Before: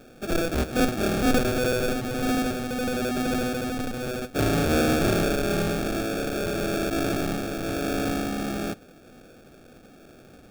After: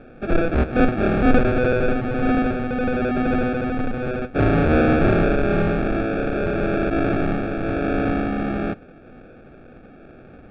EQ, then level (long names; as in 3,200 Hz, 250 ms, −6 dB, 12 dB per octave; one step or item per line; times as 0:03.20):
low-pass filter 2,500 Hz 24 dB per octave
low-shelf EQ 68 Hz +5.5 dB
+5.0 dB